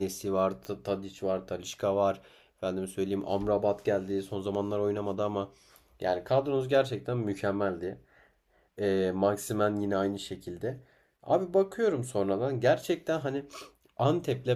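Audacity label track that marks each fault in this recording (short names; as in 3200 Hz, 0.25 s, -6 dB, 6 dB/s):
0.650000	0.650000	pop -25 dBFS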